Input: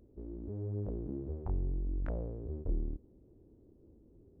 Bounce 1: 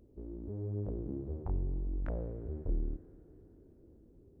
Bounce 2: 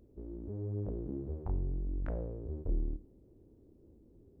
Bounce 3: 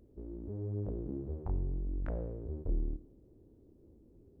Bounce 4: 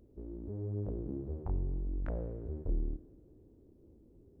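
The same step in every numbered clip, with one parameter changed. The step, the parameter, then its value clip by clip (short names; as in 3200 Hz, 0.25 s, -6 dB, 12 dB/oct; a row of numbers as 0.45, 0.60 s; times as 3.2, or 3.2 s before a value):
Schroeder reverb, RT60: 4.5, 0.44, 0.91, 1.9 s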